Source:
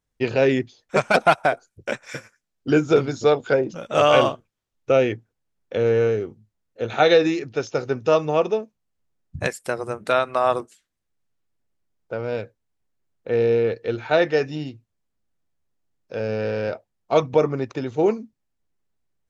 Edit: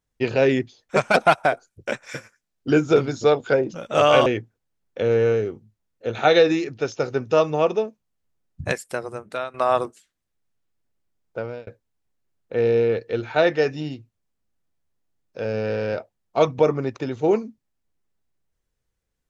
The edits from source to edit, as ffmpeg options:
ffmpeg -i in.wav -filter_complex "[0:a]asplit=4[link_01][link_02][link_03][link_04];[link_01]atrim=end=4.262[link_05];[link_02]atrim=start=5.008:end=10.29,asetpts=PTS-STARTPTS,afade=type=out:start_time=4.462:duration=0.82:silence=0.223872[link_06];[link_03]atrim=start=10.29:end=12.42,asetpts=PTS-STARTPTS,afade=type=in:duration=0.004:curve=hsin:silence=0.223872,afade=type=out:start_time=1.85:duration=0.28[link_07];[link_04]atrim=start=12.42,asetpts=PTS-STARTPTS,afade=type=in:duration=0.004:curve=hsin[link_08];[link_06][link_07][link_08]concat=n=3:v=0:a=1[link_09];[link_05][link_09]acrossfade=duration=0.004:curve1=hsin:curve2=hsin" out.wav

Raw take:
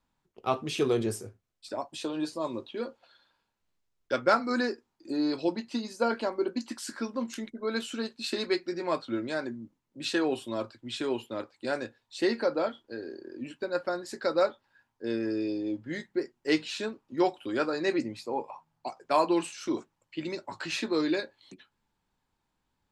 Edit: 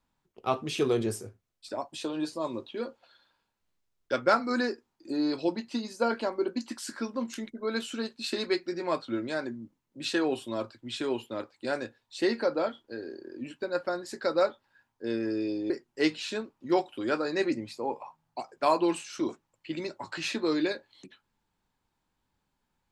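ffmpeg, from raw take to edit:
ffmpeg -i in.wav -filter_complex "[0:a]asplit=2[link_01][link_02];[link_01]atrim=end=15.702[link_03];[link_02]atrim=start=16.178[link_04];[link_03][link_04]acrossfade=duration=0.004:curve1=hsin:curve2=hsin" out.wav

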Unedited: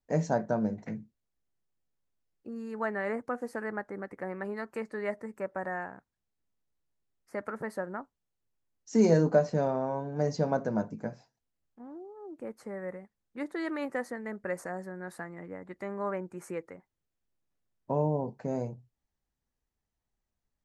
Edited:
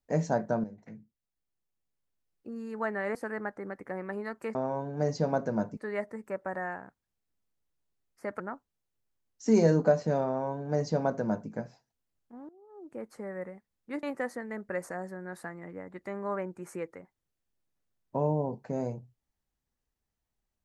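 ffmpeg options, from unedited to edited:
ffmpeg -i in.wav -filter_complex "[0:a]asplit=8[link_01][link_02][link_03][link_04][link_05][link_06][link_07][link_08];[link_01]atrim=end=0.64,asetpts=PTS-STARTPTS,afade=type=out:start_time=0.636:duration=0.004:curve=hsin:silence=0.211349[link_09];[link_02]atrim=start=0.64:end=3.152,asetpts=PTS-STARTPTS,afade=type=in:duration=1.85:silence=0.211349[link_10];[link_03]atrim=start=3.468:end=4.872[link_11];[link_04]atrim=start=9.738:end=10.962[link_12];[link_05]atrim=start=4.868:end=7.502[link_13];[link_06]atrim=start=7.868:end=11.96,asetpts=PTS-STARTPTS,afade=type=out:start_time=4.088:duration=0.004:curve=hsin:silence=0.11885[link_14];[link_07]atrim=start=11.96:end=13.502,asetpts=PTS-STARTPTS,afade=type=in:duration=0.5:silence=0.11885[link_15];[link_08]atrim=start=13.778[link_16];[link_09][link_10]concat=n=2:v=0:a=1[link_17];[link_17][link_11]acrossfade=duration=0.004:curve1=hsin:curve2=hsin[link_18];[link_18][link_12]acrossfade=duration=0.004:curve1=hsin:curve2=hsin[link_19];[link_19][link_13]acrossfade=duration=0.004:curve1=hsin:curve2=hsin[link_20];[link_14][link_15]concat=n=2:v=0:a=1[link_21];[link_20][link_21]acrossfade=duration=0.004:curve1=hsin:curve2=hsin[link_22];[link_22][link_16]acrossfade=duration=0.004:curve1=hsin:curve2=hsin" out.wav

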